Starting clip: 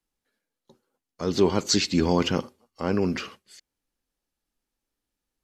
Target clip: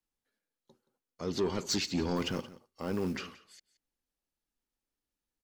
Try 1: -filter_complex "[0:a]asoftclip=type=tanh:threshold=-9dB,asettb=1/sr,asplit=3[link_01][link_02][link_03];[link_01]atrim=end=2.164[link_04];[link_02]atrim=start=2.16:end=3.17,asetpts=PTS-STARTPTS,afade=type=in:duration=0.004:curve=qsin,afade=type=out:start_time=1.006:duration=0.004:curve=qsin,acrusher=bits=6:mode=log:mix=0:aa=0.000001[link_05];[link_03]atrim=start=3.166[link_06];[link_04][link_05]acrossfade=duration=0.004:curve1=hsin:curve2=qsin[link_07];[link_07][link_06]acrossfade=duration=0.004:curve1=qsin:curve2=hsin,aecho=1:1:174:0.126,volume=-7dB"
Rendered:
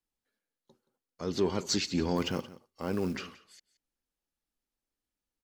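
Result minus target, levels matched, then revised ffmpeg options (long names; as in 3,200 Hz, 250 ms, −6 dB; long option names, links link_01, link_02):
soft clipping: distortion −10 dB
-filter_complex "[0:a]asoftclip=type=tanh:threshold=-16.5dB,asettb=1/sr,asplit=3[link_01][link_02][link_03];[link_01]atrim=end=2.164[link_04];[link_02]atrim=start=2.16:end=3.17,asetpts=PTS-STARTPTS,afade=type=in:duration=0.004:curve=qsin,afade=type=out:start_time=1.006:duration=0.004:curve=qsin,acrusher=bits=6:mode=log:mix=0:aa=0.000001[link_05];[link_03]atrim=start=3.166[link_06];[link_04][link_05]acrossfade=duration=0.004:curve1=hsin:curve2=qsin[link_07];[link_07][link_06]acrossfade=duration=0.004:curve1=qsin:curve2=hsin,aecho=1:1:174:0.126,volume=-7dB"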